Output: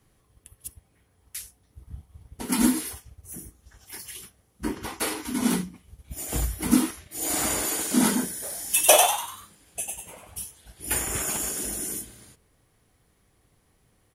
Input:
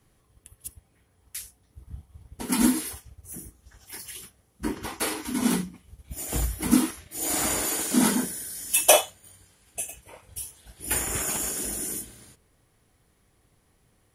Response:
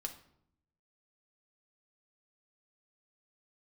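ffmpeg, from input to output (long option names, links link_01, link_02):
-filter_complex "[0:a]asplit=3[link_01][link_02][link_03];[link_01]afade=type=out:start_time=8.42:duration=0.02[link_04];[link_02]asplit=6[link_05][link_06][link_07][link_08][link_09][link_10];[link_06]adelay=97,afreqshift=110,volume=-4dB[link_11];[link_07]adelay=194,afreqshift=220,volume=-11.3dB[link_12];[link_08]adelay=291,afreqshift=330,volume=-18.7dB[link_13];[link_09]adelay=388,afreqshift=440,volume=-26dB[link_14];[link_10]adelay=485,afreqshift=550,volume=-33.3dB[link_15];[link_05][link_11][link_12][link_13][link_14][link_15]amix=inputs=6:normalize=0,afade=type=in:start_time=8.42:duration=0.02,afade=type=out:start_time=10.43:duration=0.02[link_16];[link_03]afade=type=in:start_time=10.43:duration=0.02[link_17];[link_04][link_16][link_17]amix=inputs=3:normalize=0"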